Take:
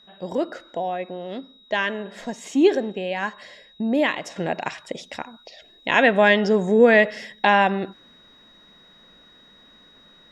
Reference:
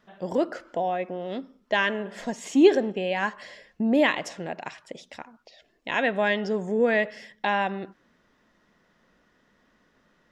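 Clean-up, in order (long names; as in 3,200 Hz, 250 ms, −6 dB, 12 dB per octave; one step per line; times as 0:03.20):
notch filter 3,800 Hz, Q 30
level 0 dB, from 0:04.36 −8 dB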